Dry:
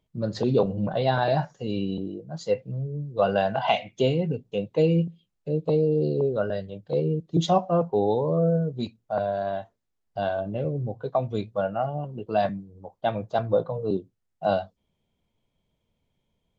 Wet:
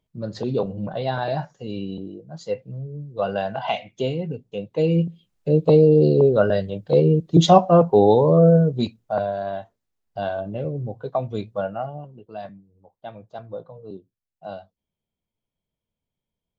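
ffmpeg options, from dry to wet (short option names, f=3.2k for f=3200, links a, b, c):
-af "volume=8.5dB,afade=t=in:st=4.71:d=0.82:silence=0.298538,afade=t=out:st=8.63:d=0.72:silence=0.398107,afade=t=out:st=11.6:d=0.65:silence=0.251189"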